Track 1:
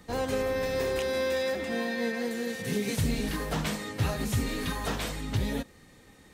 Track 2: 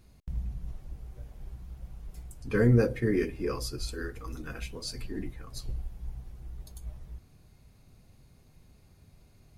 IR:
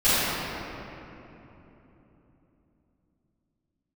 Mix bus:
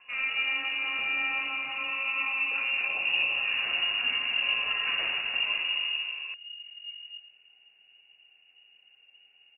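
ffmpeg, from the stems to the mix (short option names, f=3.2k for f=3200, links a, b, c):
-filter_complex "[0:a]volume=-4.5dB,asplit=2[a][b];[b]volume=-17.5dB[c];[1:a]bandreject=f=1.7k:w=7.1,asoftclip=type=tanh:threshold=-27dB,volume=-3dB,asplit=3[d][e][f];[d]atrim=end=4.16,asetpts=PTS-STARTPTS,afade=t=out:st=4.156:d=0.004:c=hsin[g];[e]atrim=start=4.16:end=6.33,asetpts=PTS-STARTPTS,volume=0[h];[f]atrim=start=6.33,asetpts=PTS-STARTPTS,afade=t=in:d=0.004:c=hsin[i];[g][h][i]concat=n=3:v=0:a=1,asplit=3[j][k][l];[k]volume=-9.5dB[m];[l]apad=whole_len=279509[n];[a][n]sidechaincompress=threshold=-48dB:ratio=8:attack=16:release=505[o];[2:a]atrim=start_sample=2205[p];[c][p]afir=irnorm=-1:irlink=0[q];[m]aecho=0:1:112:1[r];[o][j][q][r]amix=inputs=4:normalize=0,lowpass=f=2.5k:t=q:w=0.5098,lowpass=f=2.5k:t=q:w=0.6013,lowpass=f=2.5k:t=q:w=0.9,lowpass=f=2.5k:t=q:w=2.563,afreqshift=-2900"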